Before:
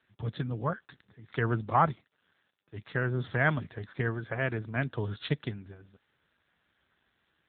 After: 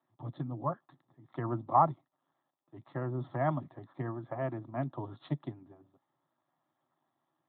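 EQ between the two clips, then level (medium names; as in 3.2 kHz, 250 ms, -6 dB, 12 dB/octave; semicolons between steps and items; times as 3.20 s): high-pass 140 Hz 24 dB/octave; resonant high shelf 1.9 kHz -10 dB, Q 3; static phaser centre 300 Hz, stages 8; 0.0 dB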